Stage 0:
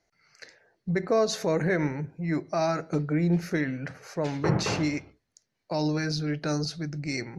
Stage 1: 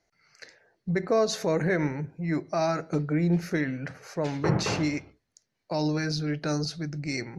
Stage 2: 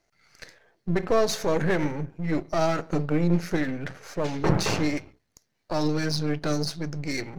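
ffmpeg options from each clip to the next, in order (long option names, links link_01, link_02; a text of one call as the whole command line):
ffmpeg -i in.wav -af anull out.wav
ffmpeg -i in.wav -af "aeval=exprs='if(lt(val(0),0),0.251*val(0),val(0))':channel_layout=same,volume=5.5dB" out.wav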